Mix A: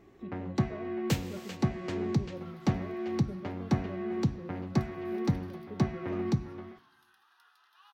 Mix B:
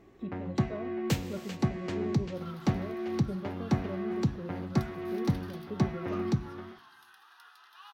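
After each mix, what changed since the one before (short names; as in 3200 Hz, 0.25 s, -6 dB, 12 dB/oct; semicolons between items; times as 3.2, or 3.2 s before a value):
speech +5.0 dB; second sound +8.5 dB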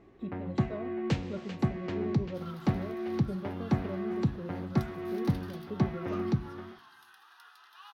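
first sound: add air absorption 140 m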